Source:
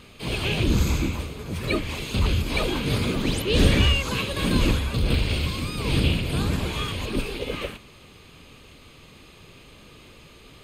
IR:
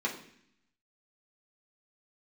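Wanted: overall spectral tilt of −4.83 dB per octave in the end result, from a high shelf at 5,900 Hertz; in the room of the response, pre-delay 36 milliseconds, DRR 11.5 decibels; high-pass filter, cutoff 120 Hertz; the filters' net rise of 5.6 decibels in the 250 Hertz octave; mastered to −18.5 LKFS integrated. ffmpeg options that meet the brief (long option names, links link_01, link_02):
-filter_complex "[0:a]highpass=120,equalizer=frequency=250:width_type=o:gain=7.5,highshelf=frequency=5900:gain=6.5,asplit=2[link_01][link_02];[1:a]atrim=start_sample=2205,adelay=36[link_03];[link_02][link_03]afir=irnorm=-1:irlink=0,volume=-18dB[link_04];[link_01][link_04]amix=inputs=2:normalize=0,volume=4dB"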